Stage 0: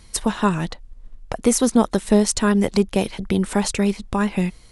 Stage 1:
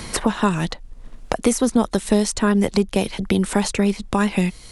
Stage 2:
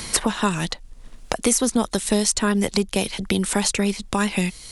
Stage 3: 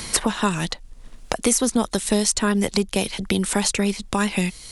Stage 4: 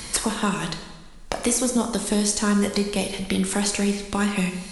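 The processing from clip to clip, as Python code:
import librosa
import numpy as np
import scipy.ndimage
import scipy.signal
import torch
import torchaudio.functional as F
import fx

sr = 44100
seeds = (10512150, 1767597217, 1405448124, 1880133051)

y1 = fx.band_squash(x, sr, depth_pct=70)
y2 = fx.high_shelf(y1, sr, hz=2300.0, db=9.5)
y2 = y2 * 10.0 ** (-3.5 / 20.0)
y3 = y2
y4 = fx.rev_plate(y3, sr, seeds[0], rt60_s=1.2, hf_ratio=0.85, predelay_ms=0, drr_db=4.0)
y4 = y4 * 10.0 ** (-3.5 / 20.0)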